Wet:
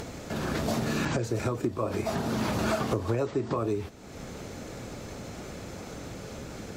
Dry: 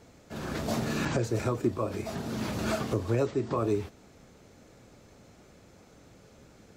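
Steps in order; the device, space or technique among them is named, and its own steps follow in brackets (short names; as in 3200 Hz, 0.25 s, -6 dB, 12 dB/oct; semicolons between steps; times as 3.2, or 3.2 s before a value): upward and downward compression (upward compressor, threshold -34 dBFS; compressor 5:1, threshold -30 dBFS, peak gain reduction 8.5 dB); 1.83–3.48 bell 930 Hz +4 dB 1.4 oct; gain +5 dB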